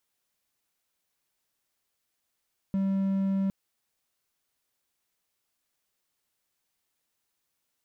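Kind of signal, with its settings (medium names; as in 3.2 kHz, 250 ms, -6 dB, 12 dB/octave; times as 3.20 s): tone triangle 194 Hz -22 dBFS 0.76 s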